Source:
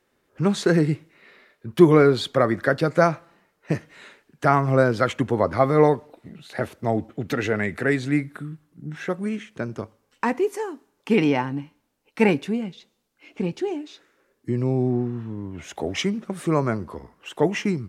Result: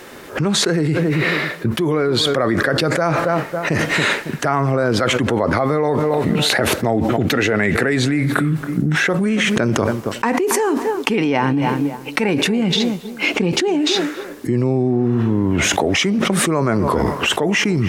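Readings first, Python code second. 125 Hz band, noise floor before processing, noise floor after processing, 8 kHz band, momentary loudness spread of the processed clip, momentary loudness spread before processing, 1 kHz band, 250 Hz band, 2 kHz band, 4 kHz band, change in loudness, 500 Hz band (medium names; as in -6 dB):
+6.0 dB, -70 dBFS, -33 dBFS, +16.5 dB, 4 LU, 17 LU, +5.0 dB, +6.0 dB, +10.0 dB, +15.5 dB, +5.0 dB, +3.5 dB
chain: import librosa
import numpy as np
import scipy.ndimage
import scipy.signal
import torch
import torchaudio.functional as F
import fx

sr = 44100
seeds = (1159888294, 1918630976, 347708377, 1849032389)

y = fx.low_shelf(x, sr, hz=120.0, db=-7.0)
y = fx.echo_filtered(y, sr, ms=276, feedback_pct=18, hz=2000.0, wet_db=-22.5)
y = fx.env_flatten(y, sr, amount_pct=100)
y = y * 10.0 ** (-8.0 / 20.0)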